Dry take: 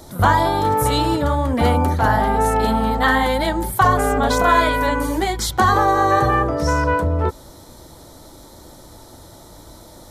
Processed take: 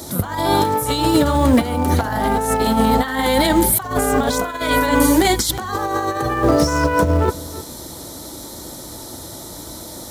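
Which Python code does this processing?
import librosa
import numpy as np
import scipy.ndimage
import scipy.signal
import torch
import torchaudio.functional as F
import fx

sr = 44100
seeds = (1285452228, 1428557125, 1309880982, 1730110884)

p1 = fx.high_shelf(x, sr, hz=3200.0, db=10.0)
p2 = p1 + fx.echo_single(p1, sr, ms=318, db=-20.0, dry=0)
p3 = fx.over_compress(p2, sr, threshold_db=-19.0, ratio=-0.5)
p4 = scipy.signal.sosfilt(scipy.signal.butter(2, 48.0, 'highpass', fs=sr, output='sos'), p3)
p5 = fx.peak_eq(p4, sr, hz=280.0, db=5.0, octaves=1.5)
p6 = fx.quant_companded(p5, sr, bits=4)
p7 = p5 + (p6 * librosa.db_to_amplitude(-12.0))
y = p7 * librosa.db_to_amplitude(-1.0)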